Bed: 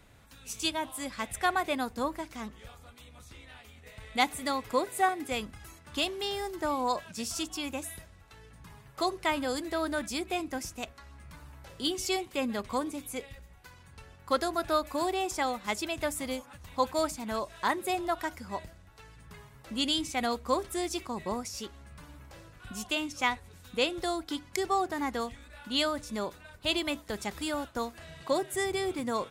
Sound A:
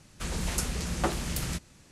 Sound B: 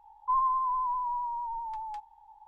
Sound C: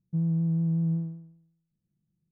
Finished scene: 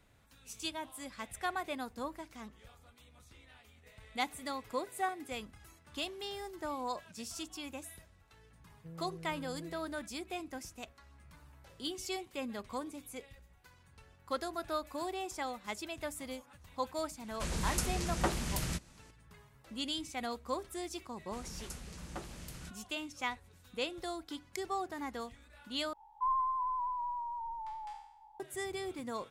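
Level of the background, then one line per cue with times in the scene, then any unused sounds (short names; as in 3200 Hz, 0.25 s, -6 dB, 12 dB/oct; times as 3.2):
bed -8.5 dB
8.71 add C -3 dB + band-pass 510 Hz, Q 3.4
17.2 add A -3.5 dB
21.12 add A -15.5 dB
25.93 replace with B -6 dB + spectral trails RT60 0.73 s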